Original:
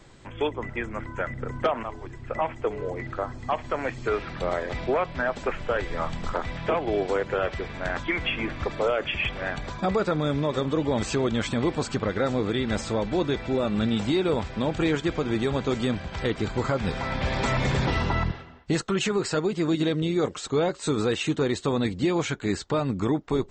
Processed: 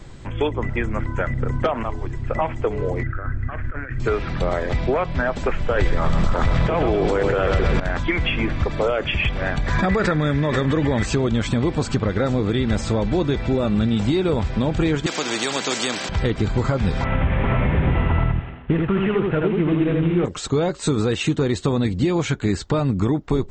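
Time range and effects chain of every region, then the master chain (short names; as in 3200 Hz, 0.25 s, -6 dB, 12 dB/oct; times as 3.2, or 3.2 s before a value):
3.03–4 EQ curve 100 Hz 0 dB, 190 Hz -10 dB, 320 Hz -6 dB, 950 Hz -17 dB, 1500 Hz +7 dB, 2400 Hz -8 dB, 3800 Hz -23 dB + negative-ratio compressor -37 dBFS
5.77–7.8 feedback echo 0.128 s, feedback 59%, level -9 dB + fast leveller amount 100%
9.66–11.06 bell 1800 Hz +13 dB 0.55 oct + backwards sustainer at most 58 dB/s
15.06–16.09 HPF 290 Hz 24 dB/oct + high shelf 3100 Hz +11 dB + spectral compressor 2:1
17.04–20.25 CVSD 16 kbps + echo 80 ms -3 dB
whole clip: low shelf 180 Hz +10.5 dB; compressor 2.5:1, threshold -23 dBFS; gain +5.5 dB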